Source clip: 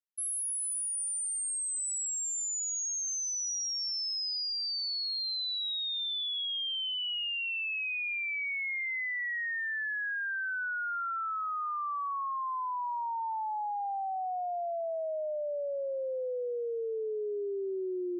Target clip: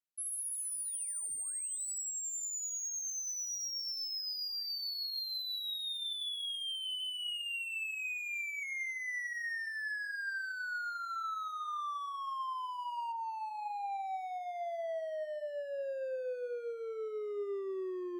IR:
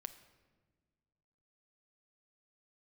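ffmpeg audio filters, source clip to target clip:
-filter_complex "[0:a]asettb=1/sr,asplit=3[a][b][c];[a]atrim=end=7.004[d];[b]atrim=start=7:end=8.63,asetpts=PTS-STARTPTS,afade=t=in:d=0.004:c=qsin,afade=t=out:st=1.626:d=0.004:c=qsin,afreqshift=81[e];[c]atrim=start=8.626[f];[d][e]acrossfade=d=0.004:c1=hsin:c2=qsin[g];[g][f]acrossfade=d=0.004:c1=qsin:c2=hsin,asplit=3[h][i][j];[h]afade=t=out:st=13.11:d=0.02[k];[i]bandreject=f=990:w=7.8,afade=t=in:st=13.11:d=0.02,afade=t=out:st=14.05:d=0.02[l];[j]afade=t=in:st=14.05:d=0.02[m];[k][l][m]amix=inputs=3:normalize=0,asoftclip=type=hard:threshold=-33.5dB[n];[1:a]atrim=start_sample=2205,atrim=end_sample=6615,asetrate=37485,aresample=44100[o];[n][o]afir=irnorm=-1:irlink=0"

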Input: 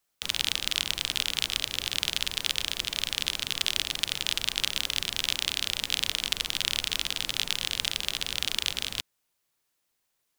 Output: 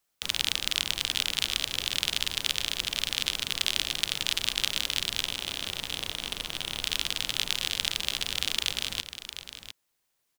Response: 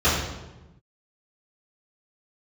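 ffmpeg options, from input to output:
-filter_complex "[0:a]asettb=1/sr,asplit=3[a][b][c];[a]atrim=end=5.244[d];[b]atrim=start=5.24:end=6.83,asetpts=PTS-STARTPTS,afade=t=in:d=0.004:c=qsin,afade=t=out:st=1.586:d=0.004:c=qsin,aeval=exprs='(tanh(7.08*val(0)+0.3)-tanh(0.3))/7.08':c=same[e];[c]atrim=start=6.826[f];[d][e]acrossfade=d=0.004:c1=hsin:c2=qsin[g];[g][f]acrossfade=d=0.004:c1=qsin:c2=hsin,aecho=1:1:705:0.282"

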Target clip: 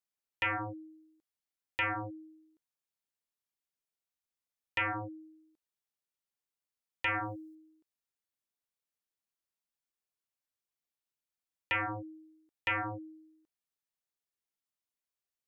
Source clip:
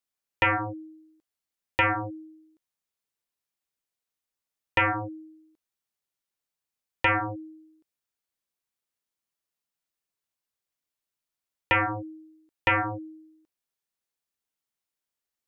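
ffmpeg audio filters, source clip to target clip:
-filter_complex "[0:a]asettb=1/sr,asplit=3[a][b][c];[a]atrim=end=7.144[d];[b]atrim=start=7.14:end=7.55,asetpts=PTS-STARTPTS,afade=t=in:d=0.004:c=qsin,afade=t=out:st=0.406:d=0.004:c=qsin,highshelf=f=3.8k:g=11[e];[c]atrim=start=7.546[f];[d][e]acrossfade=d=0.004:c1=hsin:c2=qsin[g];[g][f]acrossfade=d=0.004:c1=qsin:c2=hsin,acrossover=split=1500[h][i];[h]alimiter=level_in=1dB:limit=-24dB:level=0:latency=1,volume=-1dB[j];[j][i]amix=inputs=2:normalize=0,volume=-6.5dB"

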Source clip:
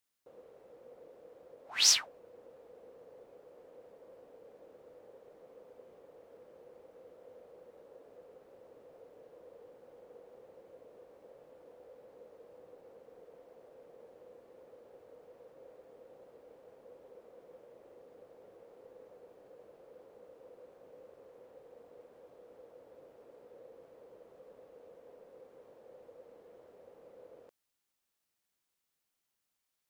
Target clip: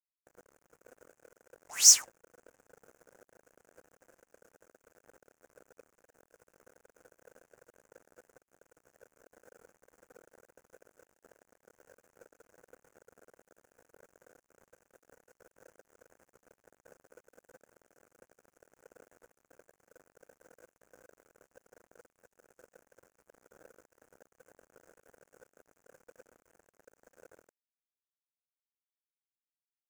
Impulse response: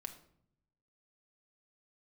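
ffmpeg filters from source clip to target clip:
-af "asoftclip=type=tanh:threshold=-21.5dB,acrusher=bits=7:mix=0:aa=0.5,highshelf=f=5.1k:t=q:w=3:g=10.5,volume=-1.5dB"

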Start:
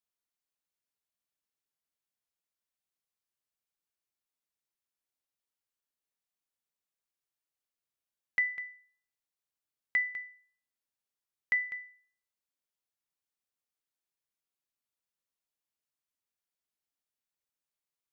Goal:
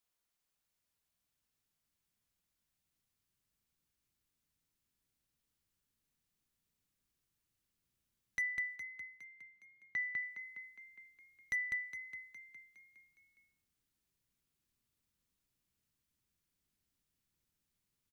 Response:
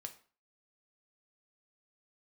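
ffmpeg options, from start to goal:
-filter_complex "[0:a]asubboost=boost=6:cutoff=240,asplit=2[a][b];[b]acompressor=threshold=-38dB:ratio=16,volume=2dB[c];[a][c]amix=inputs=2:normalize=0,alimiter=limit=-20.5dB:level=0:latency=1:release=214,asoftclip=type=hard:threshold=-29dB,asettb=1/sr,asplit=3[d][e][f];[d]atrim=end=8.764[g];[e]atrim=start=8.76:end=10.23,asetpts=PTS-STARTPTS,afade=t=in:d=0.004:c=qsin,afade=t=out:st=1.466:d=0.004:c=qsin,highpass=100,lowpass=2.6k[h];[f]atrim=start=10.226[i];[g][h]acrossfade=d=0.004:c1=hsin:c2=qsin[j];[j][i]acrossfade=d=0.004:c1=qsin:c2=hsin,asplit=2[k][l];[l]asplit=4[m][n][o][p];[m]adelay=412,afreqshift=48,volume=-10.5dB[q];[n]adelay=824,afreqshift=96,volume=-18.5dB[r];[o]adelay=1236,afreqshift=144,volume=-26.4dB[s];[p]adelay=1648,afreqshift=192,volume=-34.4dB[t];[q][r][s][t]amix=inputs=4:normalize=0[u];[k][u]amix=inputs=2:normalize=0,volume=-2dB"

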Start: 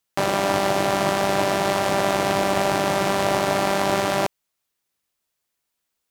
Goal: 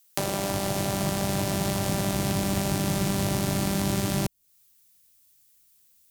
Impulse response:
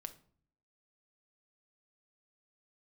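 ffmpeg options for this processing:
-filter_complex "[0:a]asubboost=boost=7.5:cutoff=210,acrossover=split=200|710[a][b][c];[a]acompressor=threshold=-25dB:ratio=4[d];[b]acompressor=threshold=-28dB:ratio=4[e];[c]acompressor=threshold=-40dB:ratio=4[f];[d][e][f]amix=inputs=3:normalize=0,crystalizer=i=6.5:c=0,volume=-2.5dB"

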